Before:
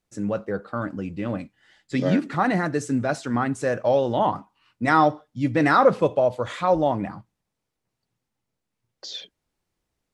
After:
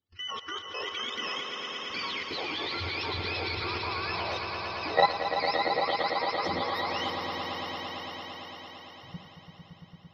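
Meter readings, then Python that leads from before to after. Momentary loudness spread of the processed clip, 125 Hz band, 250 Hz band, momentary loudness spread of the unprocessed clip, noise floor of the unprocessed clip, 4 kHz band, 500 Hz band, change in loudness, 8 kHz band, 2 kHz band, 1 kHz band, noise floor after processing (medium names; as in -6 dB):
18 LU, -13.0 dB, -16.5 dB, 14 LU, -82 dBFS, +8.5 dB, -11.0 dB, -8.0 dB, no reading, -2.5 dB, -5.5 dB, -54 dBFS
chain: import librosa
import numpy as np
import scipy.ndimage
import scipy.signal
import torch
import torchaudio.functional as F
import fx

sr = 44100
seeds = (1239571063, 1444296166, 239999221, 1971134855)

p1 = fx.octave_mirror(x, sr, pivot_hz=780.0)
p2 = fx.graphic_eq_10(p1, sr, hz=(125, 4000, 8000), db=(-11, 11, -12))
p3 = fx.transient(p2, sr, attack_db=-7, sustain_db=2)
p4 = fx.level_steps(p3, sr, step_db=18)
y = p4 + fx.echo_swell(p4, sr, ms=113, loudest=5, wet_db=-8, dry=0)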